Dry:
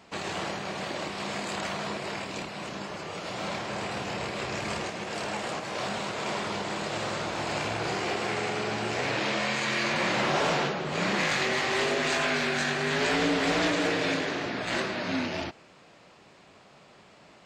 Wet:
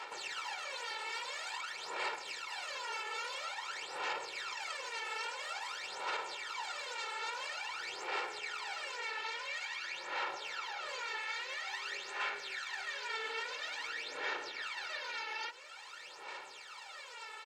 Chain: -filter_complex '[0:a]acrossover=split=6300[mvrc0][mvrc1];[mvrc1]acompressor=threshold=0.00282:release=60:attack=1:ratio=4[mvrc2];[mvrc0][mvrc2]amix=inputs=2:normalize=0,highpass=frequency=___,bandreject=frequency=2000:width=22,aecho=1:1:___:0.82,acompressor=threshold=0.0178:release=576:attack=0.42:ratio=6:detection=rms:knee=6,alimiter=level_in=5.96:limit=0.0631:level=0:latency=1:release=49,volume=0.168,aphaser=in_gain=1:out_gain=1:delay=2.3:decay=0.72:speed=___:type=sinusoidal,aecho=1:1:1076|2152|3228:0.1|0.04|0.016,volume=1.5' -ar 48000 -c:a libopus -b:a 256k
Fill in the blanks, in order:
1000, 2.2, 0.49